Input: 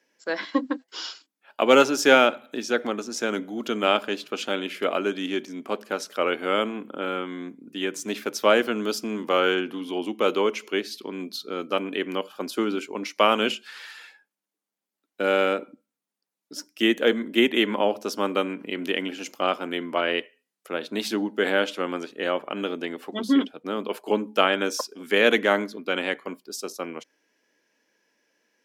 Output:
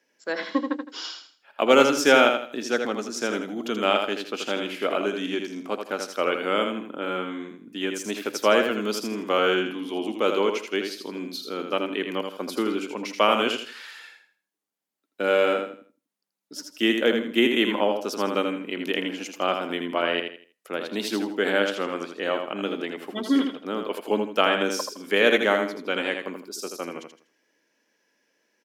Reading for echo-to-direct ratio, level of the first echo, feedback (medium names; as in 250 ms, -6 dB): -5.5 dB, -6.0 dB, 30%